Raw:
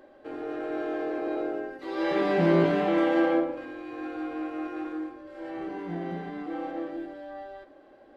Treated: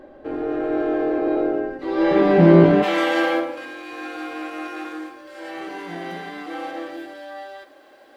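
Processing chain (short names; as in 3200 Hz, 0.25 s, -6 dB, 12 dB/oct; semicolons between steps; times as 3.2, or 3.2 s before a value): tilt -2 dB/oct, from 2.82 s +4 dB/oct; gain +7 dB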